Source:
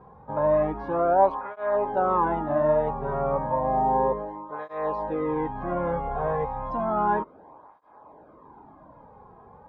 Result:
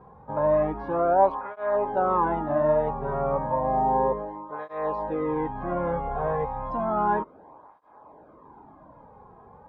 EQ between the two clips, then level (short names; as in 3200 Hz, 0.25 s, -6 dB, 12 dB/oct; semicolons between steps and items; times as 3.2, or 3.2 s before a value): air absorption 55 m; 0.0 dB